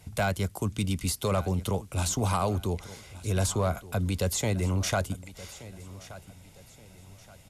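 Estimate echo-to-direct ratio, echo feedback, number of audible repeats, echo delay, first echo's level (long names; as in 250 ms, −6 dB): −17.0 dB, 36%, 2, 1,175 ms, −17.5 dB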